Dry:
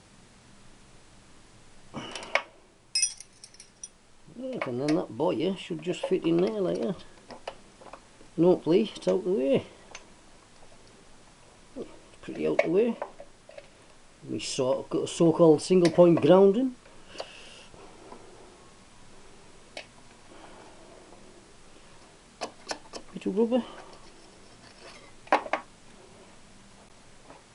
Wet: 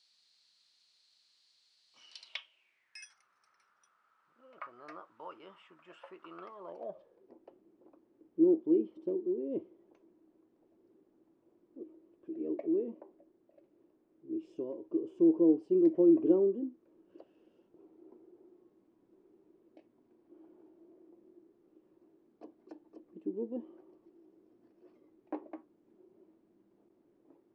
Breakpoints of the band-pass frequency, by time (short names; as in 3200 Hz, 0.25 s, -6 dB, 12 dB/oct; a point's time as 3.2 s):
band-pass, Q 6.8
2.21 s 4300 Hz
3.19 s 1300 Hz
6.43 s 1300 Hz
7.36 s 330 Hz